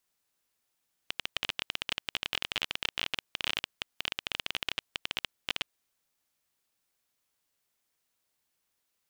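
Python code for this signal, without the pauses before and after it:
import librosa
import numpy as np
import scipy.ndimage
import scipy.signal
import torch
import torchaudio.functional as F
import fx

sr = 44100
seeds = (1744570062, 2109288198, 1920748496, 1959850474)

y = fx.geiger_clicks(sr, seeds[0], length_s=4.74, per_s=20.0, level_db=-12.5)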